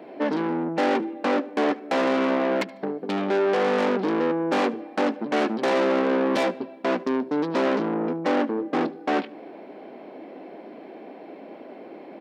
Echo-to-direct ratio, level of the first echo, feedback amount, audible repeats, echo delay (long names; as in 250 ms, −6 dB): −22.0 dB, −22.5 dB, 28%, 2, 74 ms